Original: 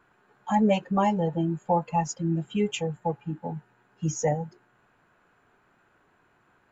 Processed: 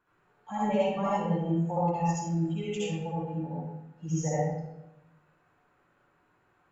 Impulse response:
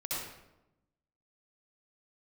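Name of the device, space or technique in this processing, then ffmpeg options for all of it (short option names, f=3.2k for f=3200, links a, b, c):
bathroom: -filter_complex "[1:a]atrim=start_sample=2205[a];[0:a][a]afir=irnorm=-1:irlink=0,volume=-7.5dB"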